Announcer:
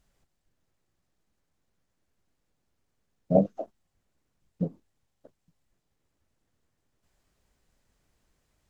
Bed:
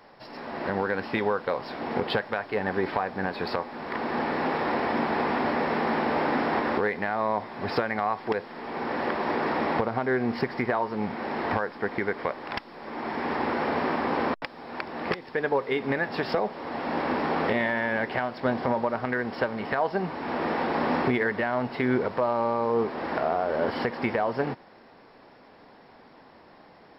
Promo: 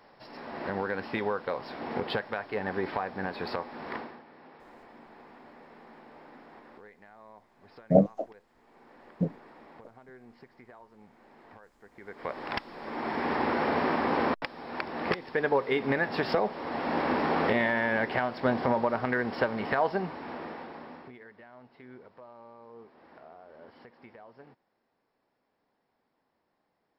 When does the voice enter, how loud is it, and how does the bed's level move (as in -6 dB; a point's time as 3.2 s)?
4.60 s, +1.0 dB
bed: 3.95 s -4.5 dB
4.23 s -26 dB
11.91 s -26 dB
12.38 s -0.5 dB
19.87 s -0.5 dB
21.14 s -25 dB